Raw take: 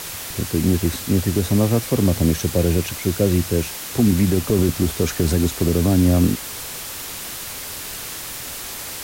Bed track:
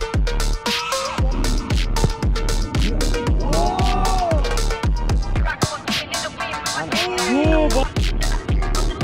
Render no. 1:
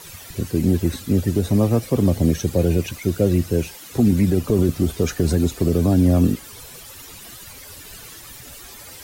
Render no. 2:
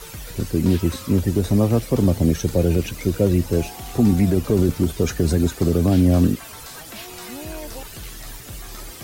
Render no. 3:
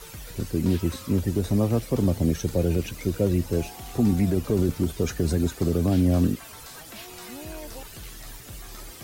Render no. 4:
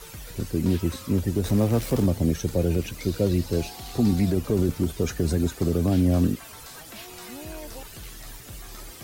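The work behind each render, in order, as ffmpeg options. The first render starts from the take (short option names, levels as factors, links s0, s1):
-af "afftdn=nr=13:nf=-32"
-filter_complex "[1:a]volume=0.126[s0];[0:a][s0]amix=inputs=2:normalize=0"
-af "volume=0.562"
-filter_complex "[0:a]asettb=1/sr,asplit=3[s0][s1][s2];[s0]atrim=end=1.444[s3];[s1]atrim=start=1.44:end=2.06,asetpts=PTS-STARTPTS,afade=t=in:d=0.004:c=qsin,afade=t=out:st=0.616:d=0.004:c=qsin,aeval=exprs='val(0)+0.5*0.0251*sgn(val(0))':c=same[s4];[s2]atrim=start=2.056[s5];[s3][s4]acrossfade=d=0.004:c1=hsin:c2=qsin[s6];[s6][s5]acrossfade=d=0.004:c1=qsin:c2=hsin,asettb=1/sr,asplit=3[s7][s8][s9];[s7]atrim=end=3.004[s10];[s8]atrim=start=3:end=4.32,asetpts=PTS-STARTPTS,afade=t=in:d=0.004:c=qsin,afade=t=out:st=1.316:d=0.004:c=qsin,equalizer=f=4300:w=2.3:g=8[s11];[s9]atrim=start=4.316[s12];[s10][s11]acrossfade=d=0.004:c1=hsin:c2=qsin[s13];[s13][s12]acrossfade=d=0.004:c1=qsin:c2=hsin"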